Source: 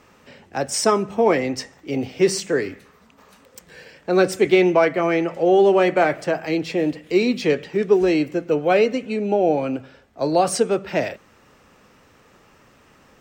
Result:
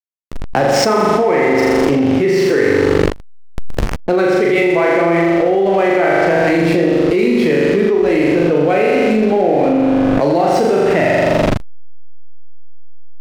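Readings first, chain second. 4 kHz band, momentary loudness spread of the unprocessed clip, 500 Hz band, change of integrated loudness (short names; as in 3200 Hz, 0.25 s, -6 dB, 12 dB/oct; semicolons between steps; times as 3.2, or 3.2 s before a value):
+4.5 dB, 12 LU, +6.5 dB, +6.5 dB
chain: air absorption 140 m; flutter echo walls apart 7.1 m, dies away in 1.3 s; backlash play -27.5 dBFS; dynamic EQ 2000 Hz, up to +7 dB, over -43 dBFS, Q 6.1; fast leveller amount 100%; gain -4.5 dB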